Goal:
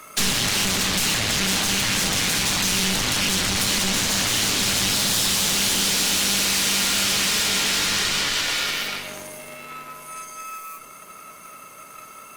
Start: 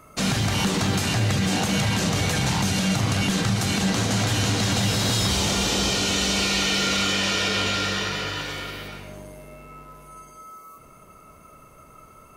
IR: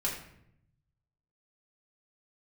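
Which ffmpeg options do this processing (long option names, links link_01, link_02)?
-filter_complex "[0:a]highpass=170,highshelf=frequency=3500:gain=-4,bandreject=frequency=326.7:width_type=h:width=4,bandreject=frequency=653.4:width_type=h:width=4,bandreject=frequency=980.1:width_type=h:width=4,aeval=exprs='0.251*(cos(1*acos(clip(val(0)/0.251,-1,1)))-cos(1*PI/2))+0.126*(cos(6*acos(clip(val(0)/0.251,-1,1)))-cos(6*PI/2))':channel_layout=same,acrossover=split=220[link_01][link_02];[link_02]acompressor=threshold=-27dB:ratio=6[link_03];[link_01][link_03]amix=inputs=2:normalize=0,tiltshelf=frequency=1400:gain=-8.5,asoftclip=type=tanh:threshold=-24.5dB,asplit=2[link_04][link_05];[1:a]atrim=start_sample=2205[link_06];[link_05][link_06]afir=irnorm=-1:irlink=0,volume=-17dB[link_07];[link_04][link_07]amix=inputs=2:normalize=0,volume=7.5dB" -ar 48000 -c:a libopus -b:a 48k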